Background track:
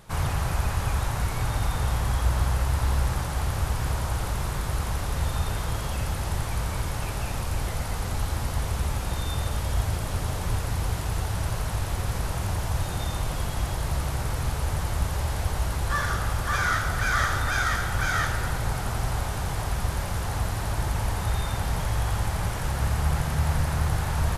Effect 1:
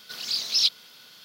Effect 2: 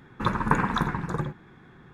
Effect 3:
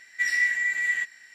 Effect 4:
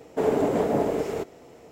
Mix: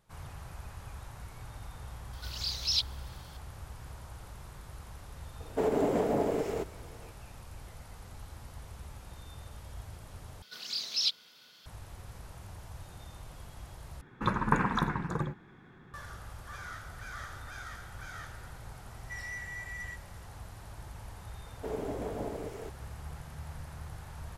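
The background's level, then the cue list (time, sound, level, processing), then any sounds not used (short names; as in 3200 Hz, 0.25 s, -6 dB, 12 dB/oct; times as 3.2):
background track -19 dB
2.13 add 1 -7.5 dB
5.4 add 4 -4.5 dB + limiter -14.5 dBFS
10.42 replace with 1 -6.5 dB + high shelf 8200 Hz -5.5 dB
14.01 replace with 2 -4 dB
18.91 add 3 -14.5 dB + soft clip -22.5 dBFS
21.46 add 4 -14 dB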